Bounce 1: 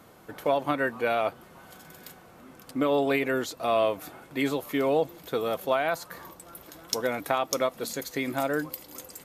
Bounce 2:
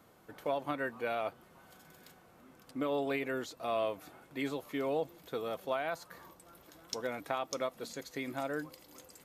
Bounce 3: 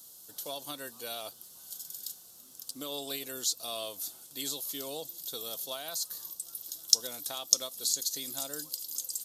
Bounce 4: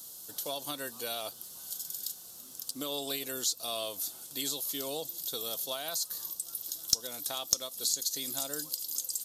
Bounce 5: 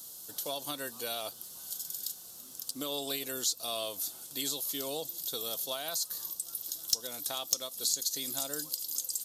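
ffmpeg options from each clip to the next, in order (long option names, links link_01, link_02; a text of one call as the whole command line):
ffmpeg -i in.wav -filter_complex "[0:a]acrossover=split=8100[link_01][link_02];[link_02]acompressor=threshold=-49dB:ratio=4:attack=1:release=60[link_03];[link_01][link_03]amix=inputs=2:normalize=0,volume=-9dB" out.wav
ffmpeg -i in.wav -af "aexciter=amount=14.8:drive=8.2:freq=3500,volume=-8dB" out.wav
ffmpeg -i in.wav -af "aeval=exprs='(tanh(1.78*val(0)+0.2)-tanh(0.2))/1.78':channel_layout=same,acompressor=threshold=-42dB:ratio=1.5,volume=5.5dB" out.wav
ffmpeg -i in.wav -af "volume=15dB,asoftclip=hard,volume=-15dB" out.wav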